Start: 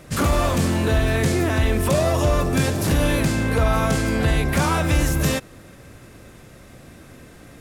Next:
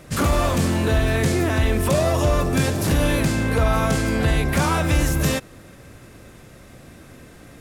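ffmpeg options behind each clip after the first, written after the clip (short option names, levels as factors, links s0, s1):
-af anull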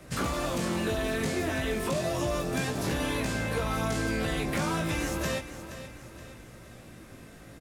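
-filter_complex "[0:a]flanger=delay=16:depth=2.8:speed=0.34,acrossover=split=170|360|2900|7600[s0][s1][s2][s3][s4];[s0]acompressor=threshold=0.0158:ratio=4[s5];[s1]acompressor=threshold=0.0224:ratio=4[s6];[s2]acompressor=threshold=0.0316:ratio=4[s7];[s3]acompressor=threshold=0.0112:ratio=4[s8];[s4]acompressor=threshold=0.00501:ratio=4[s9];[s5][s6][s7][s8][s9]amix=inputs=5:normalize=0,aecho=1:1:473|946|1419|1892:0.237|0.104|0.0459|0.0202,volume=0.841"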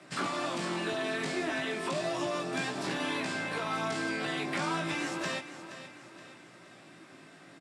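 -af "highpass=f=180:w=0.5412,highpass=f=180:w=1.3066,equalizer=f=220:t=q:w=4:g=-10,equalizer=f=490:t=q:w=4:g=-10,equalizer=f=6400:t=q:w=4:g=-7,lowpass=f=8100:w=0.5412,lowpass=f=8100:w=1.3066"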